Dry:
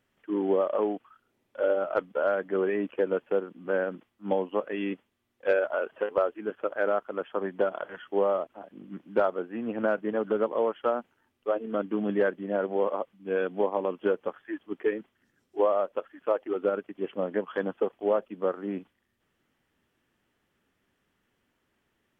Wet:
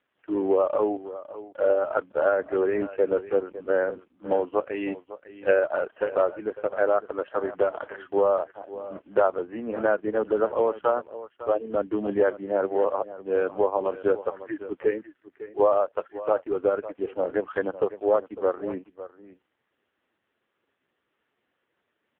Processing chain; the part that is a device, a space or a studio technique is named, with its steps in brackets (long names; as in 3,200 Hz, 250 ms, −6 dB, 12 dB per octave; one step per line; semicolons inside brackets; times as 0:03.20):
satellite phone (band-pass filter 310–3,100 Hz; single-tap delay 554 ms −15 dB; level +5 dB; AMR narrowband 5.15 kbit/s 8,000 Hz)